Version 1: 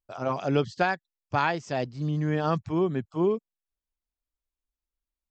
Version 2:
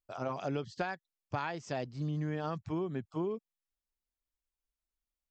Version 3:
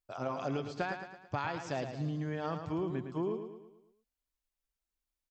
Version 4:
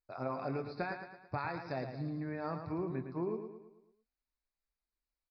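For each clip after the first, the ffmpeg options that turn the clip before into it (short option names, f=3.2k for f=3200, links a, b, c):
-af "acompressor=threshold=-28dB:ratio=6,volume=-3.5dB"
-af "aecho=1:1:110|220|330|440|550|660:0.398|0.191|0.0917|0.044|0.0211|0.0101"
-filter_complex "[0:a]asuperstop=centerf=3100:order=8:qfactor=2.7,asplit=2[a][b];[b]adelay=23,volume=-11dB[c];[a][c]amix=inputs=2:normalize=0,aresample=11025,aresample=44100,volume=-2.5dB"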